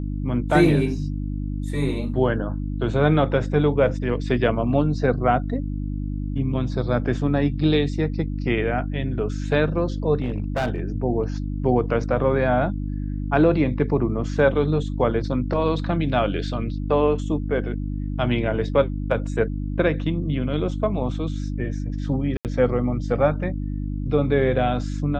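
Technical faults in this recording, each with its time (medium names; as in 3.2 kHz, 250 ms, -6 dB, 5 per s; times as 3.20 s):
hum 50 Hz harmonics 6 -27 dBFS
10.20–10.82 s: clipped -19.5 dBFS
22.37–22.45 s: dropout 78 ms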